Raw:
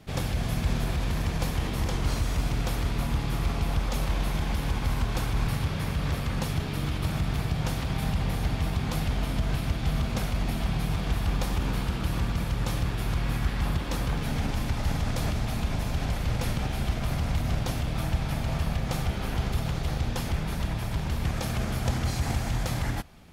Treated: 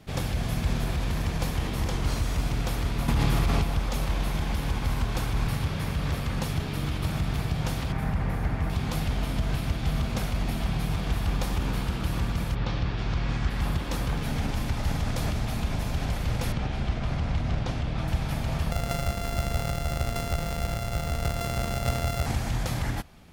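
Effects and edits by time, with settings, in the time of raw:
3.08–3.64 s: level flattener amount 100%
7.92–8.70 s: resonant high shelf 2.5 kHz -8 dB, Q 1.5
12.54–13.49 s: low-pass 4.4 kHz -> 7.4 kHz 24 dB/octave
16.52–18.08 s: distance through air 100 m
18.71–22.26 s: sorted samples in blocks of 64 samples

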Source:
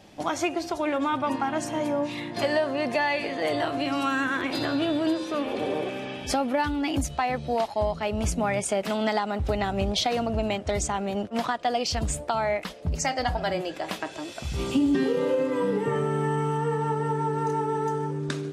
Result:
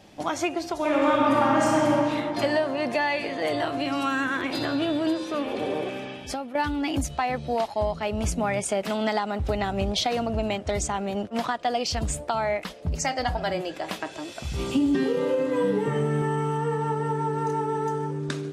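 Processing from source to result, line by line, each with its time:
0.75–1.87 s: reverb throw, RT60 2.9 s, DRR -5 dB
5.96–6.55 s: fade out, to -12.5 dB
15.45–16.22 s: doubling 14 ms -5 dB

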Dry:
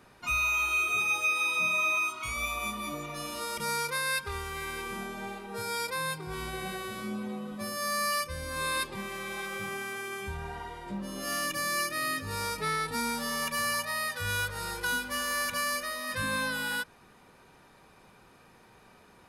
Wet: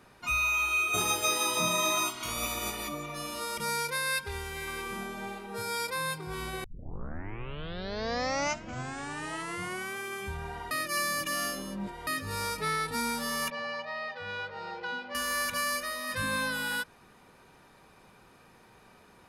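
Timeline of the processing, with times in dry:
0.93–2.87 s: spectral peaks clipped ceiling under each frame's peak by 21 dB
3.69–4.68 s: band-stop 1.2 kHz, Q 6.5
6.64 s: tape start 3.30 s
10.71–12.07 s: reverse
13.50–15.15 s: cabinet simulation 220–3600 Hz, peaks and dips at 280 Hz -7 dB, 760 Hz +9 dB, 1.1 kHz -8 dB, 1.6 kHz -7 dB, 2.3 kHz -4 dB, 3.4 kHz -7 dB

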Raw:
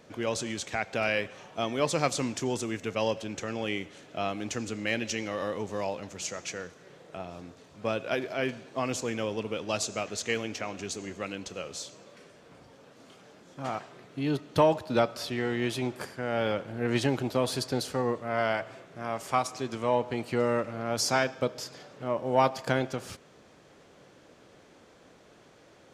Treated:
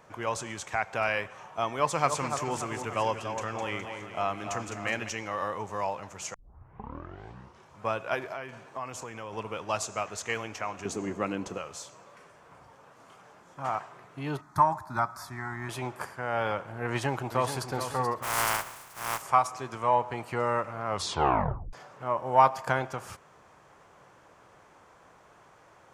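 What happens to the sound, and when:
1.74–5.09 s: two-band feedback delay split 1.6 kHz, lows 291 ms, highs 207 ms, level -7 dB
6.34 s: tape start 1.47 s
8.32–9.33 s: compression, threshold -33 dBFS
10.85–11.58 s: peaking EQ 270 Hz +14 dB 2 oct
14.41–15.69 s: static phaser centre 1.2 kHz, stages 4
16.88–17.71 s: echo throw 430 ms, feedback 45%, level -8.5 dB
18.22–19.21 s: spectral contrast reduction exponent 0.25
20.85 s: tape stop 0.88 s
whole clip: graphic EQ 250/500/1000/4000 Hz -8/-4/+9/-8 dB

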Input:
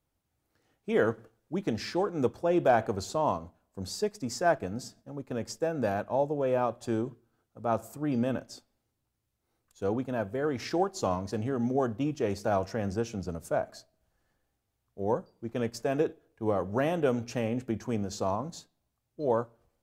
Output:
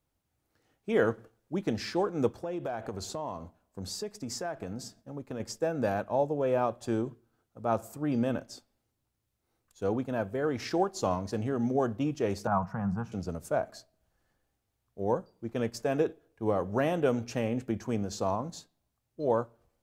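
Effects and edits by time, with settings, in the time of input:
2.28–5.40 s: compression 5:1, threshold -32 dBFS
12.47–13.12 s: FFT filter 110 Hz 0 dB, 170 Hz +11 dB, 320 Hz -16 dB, 550 Hz -12 dB, 880 Hz +7 dB, 1.3 kHz +5 dB, 2 kHz -10 dB, 3.5 kHz -18 dB, 5.5 kHz -19 dB, 14 kHz -13 dB

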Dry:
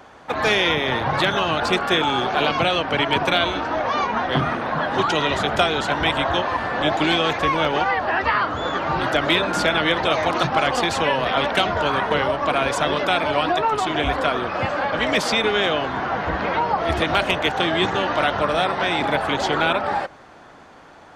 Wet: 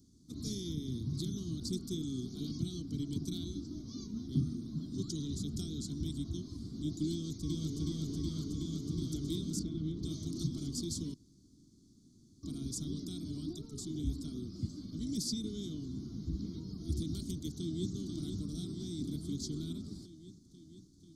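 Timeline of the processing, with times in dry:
7.12–7.80 s: echo throw 370 ms, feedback 85%, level -0.5 dB
9.59–10.03 s: tape spacing loss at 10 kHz 23 dB
11.14–12.43 s: room tone
17.50–17.93 s: echo throw 490 ms, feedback 75%, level -6.5 dB
whole clip: inverse Chebyshev band-stop 510–2800 Hz, stop band 40 dB; trim -7.5 dB

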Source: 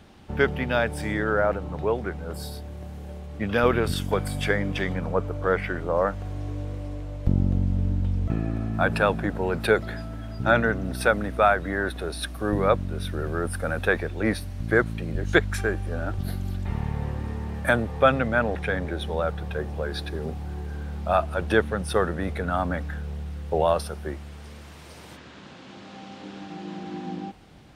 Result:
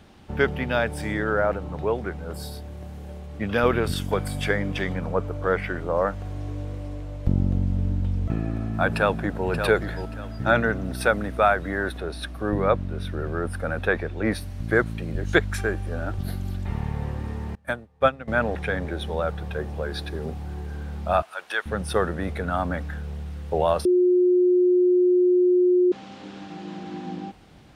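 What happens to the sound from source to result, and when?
8.88–9.47 s: echo throw 580 ms, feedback 25%, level -7.5 dB
11.98–14.32 s: treble shelf 5.7 kHz -10.5 dB
17.55–18.28 s: upward expansion 2.5:1, over -32 dBFS
21.22–21.66 s: high-pass 1.1 kHz
23.85–25.92 s: bleep 360 Hz -15 dBFS

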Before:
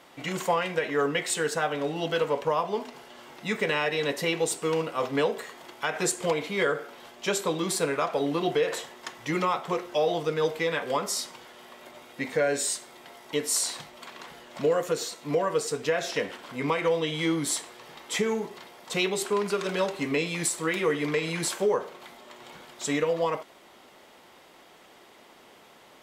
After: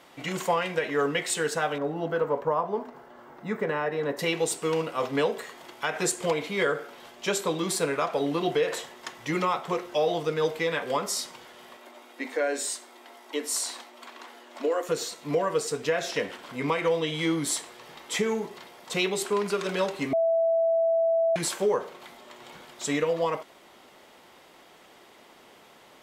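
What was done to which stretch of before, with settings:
1.78–4.19 s: high-order bell 5.3 kHz -15 dB 2.8 oct
11.77–14.89 s: rippled Chebyshev high-pass 230 Hz, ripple 3 dB
20.13–21.36 s: bleep 660 Hz -20 dBFS

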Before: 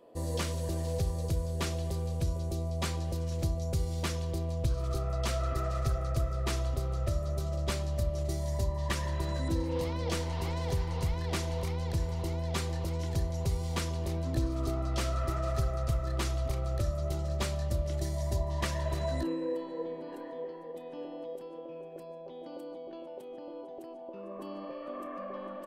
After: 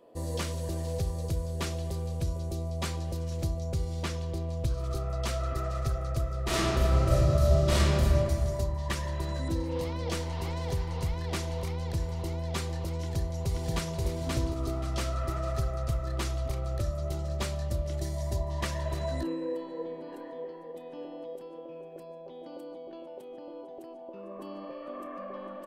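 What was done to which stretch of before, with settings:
3.60–4.53 s: treble shelf 8.8 kHz -8 dB
6.46–8.09 s: reverb throw, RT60 2 s, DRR -9.5 dB
13.01–14.01 s: echo throw 530 ms, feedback 25%, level -1.5 dB

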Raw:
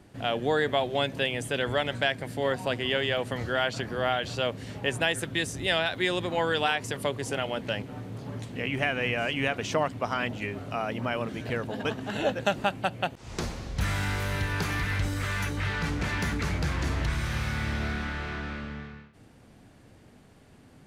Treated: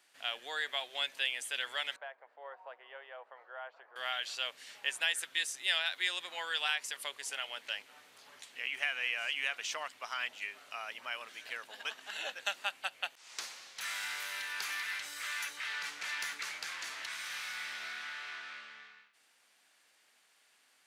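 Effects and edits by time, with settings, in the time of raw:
1.96–3.96 s: Butterworth band-pass 710 Hz, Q 1.1
whole clip: Bessel high-pass 2.1 kHz, order 2; trim -1 dB

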